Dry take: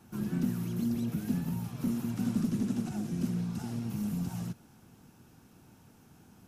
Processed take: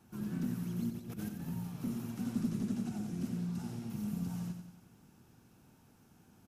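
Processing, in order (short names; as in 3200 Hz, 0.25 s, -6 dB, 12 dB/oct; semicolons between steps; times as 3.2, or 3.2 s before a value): 0.9–1.42 negative-ratio compressor -36 dBFS, ratio -0.5; feedback echo 91 ms, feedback 50%, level -7 dB; gain -6 dB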